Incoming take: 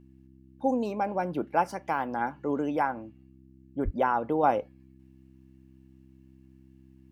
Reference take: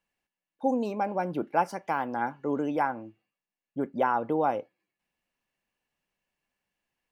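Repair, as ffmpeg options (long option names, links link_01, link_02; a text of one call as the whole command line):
ffmpeg -i in.wav -filter_complex "[0:a]bandreject=frequency=65.5:width_type=h:width=4,bandreject=frequency=131:width_type=h:width=4,bandreject=frequency=196.5:width_type=h:width=4,bandreject=frequency=262:width_type=h:width=4,bandreject=frequency=327.5:width_type=h:width=4,asplit=3[link_01][link_02][link_03];[link_01]afade=type=out:start_time=3.84:duration=0.02[link_04];[link_02]highpass=frequency=140:width=0.5412,highpass=frequency=140:width=1.3066,afade=type=in:start_time=3.84:duration=0.02,afade=type=out:start_time=3.96:duration=0.02[link_05];[link_03]afade=type=in:start_time=3.96:duration=0.02[link_06];[link_04][link_05][link_06]amix=inputs=3:normalize=0,asetnsamples=nb_out_samples=441:pad=0,asendcmd='4.43 volume volume -3.5dB',volume=0dB" out.wav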